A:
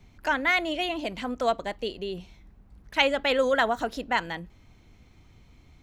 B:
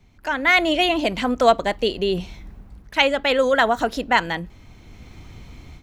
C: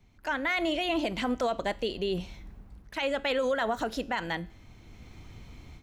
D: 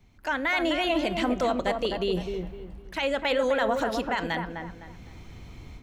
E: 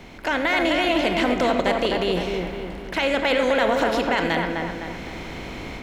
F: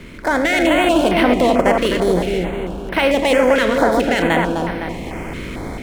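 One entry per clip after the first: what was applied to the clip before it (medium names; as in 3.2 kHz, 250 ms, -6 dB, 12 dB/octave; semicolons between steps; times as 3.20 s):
level rider gain up to 15 dB; trim -1 dB
peak limiter -13.5 dBFS, peak gain reduction 11.5 dB; feedback comb 110 Hz, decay 0.58 s, harmonics all, mix 40%; trim -2.5 dB
feedback echo behind a low-pass 255 ms, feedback 31%, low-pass 1.7 kHz, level -5 dB; trim +2.5 dB
spectral levelling over time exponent 0.6; on a send at -10 dB: reverberation RT60 0.45 s, pre-delay 71 ms; on the sum: trim +1.5 dB
median filter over 9 samples; step-sequenced notch 4.5 Hz 780–7200 Hz; trim +7.5 dB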